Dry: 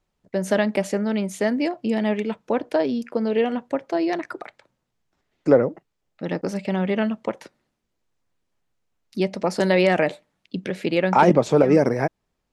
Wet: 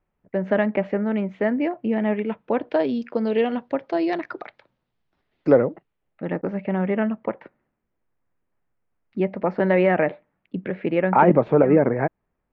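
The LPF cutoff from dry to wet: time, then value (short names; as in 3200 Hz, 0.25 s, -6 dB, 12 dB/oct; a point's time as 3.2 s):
LPF 24 dB/oct
2.12 s 2400 Hz
3.02 s 4300 Hz
5.5 s 4300 Hz
6.38 s 2200 Hz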